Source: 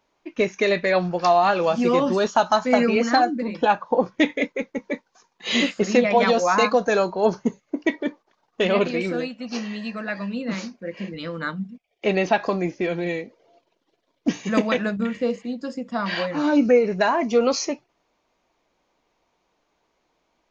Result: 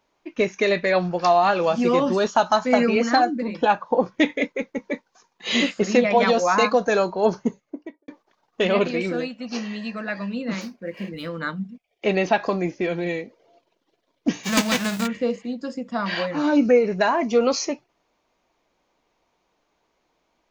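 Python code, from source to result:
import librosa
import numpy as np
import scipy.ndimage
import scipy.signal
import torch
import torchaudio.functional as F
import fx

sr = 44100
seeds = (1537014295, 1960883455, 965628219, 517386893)

y = fx.studio_fade_out(x, sr, start_s=7.35, length_s=0.73)
y = fx.median_filter(y, sr, points=5, at=(10.61, 11.32))
y = fx.envelope_flatten(y, sr, power=0.3, at=(14.43, 15.06), fade=0.02)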